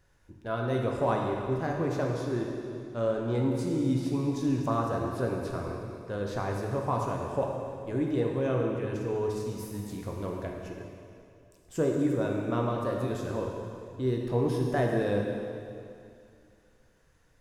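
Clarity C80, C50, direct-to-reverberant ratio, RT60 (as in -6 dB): 2.5 dB, 1.5 dB, -0.5 dB, 2.5 s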